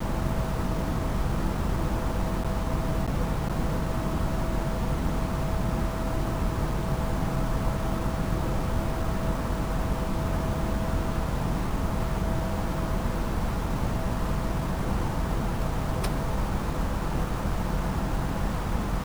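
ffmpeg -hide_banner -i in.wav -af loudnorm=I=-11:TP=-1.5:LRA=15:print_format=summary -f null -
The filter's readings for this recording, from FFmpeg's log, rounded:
Input Integrated:    -29.4 LUFS
Input True Peak:     -12.8 dBTP
Input LRA:             0.6 LU
Input Threshold:     -39.4 LUFS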